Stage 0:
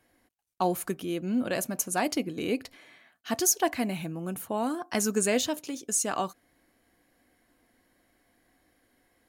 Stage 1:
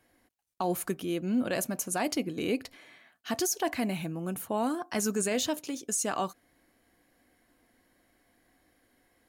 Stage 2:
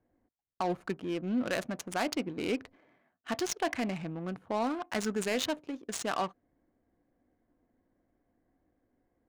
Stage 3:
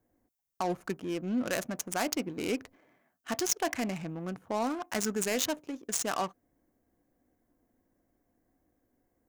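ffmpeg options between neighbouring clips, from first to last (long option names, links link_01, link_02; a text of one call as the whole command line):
ffmpeg -i in.wav -af "alimiter=limit=-20dB:level=0:latency=1:release=16" out.wav
ffmpeg -i in.wav -af "adynamicsmooth=sensitivity=6:basefreq=610,tiltshelf=frequency=970:gain=-3" out.wav
ffmpeg -i in.wav -af "aexciter=amount=3.1:drive=2.7:freq=5500" out.wav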